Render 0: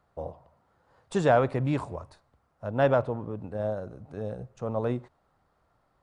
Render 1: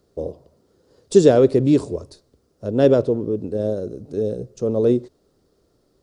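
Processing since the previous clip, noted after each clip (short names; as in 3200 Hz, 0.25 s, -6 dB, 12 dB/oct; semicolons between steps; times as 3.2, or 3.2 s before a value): EQ curve 140 Hz 0 dB, 410 Hz +12 dB, 820 Hz -12 dB, 2200 Hz -7 dB, 5100 Hz +11 dB, 8800 Hz +7 dB; gain +5.5 dB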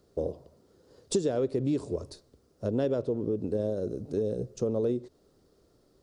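compressor 6:1, threshold -24 dBFS, peak gain reduction 16 dB; gain -1.5 dB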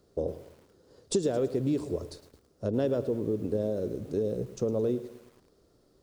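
lo-fi delay 0.109 s, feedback 55%, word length 8-bit, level -14.5 dB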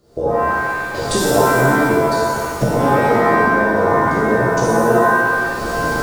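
recorder AGC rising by 45 dB/s; stuck buffer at 0.53, samples 2048, times 8; shimmer reverb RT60 1.6 s, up +7 st, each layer -2 dB, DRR -6.5 dB; gain +4 dB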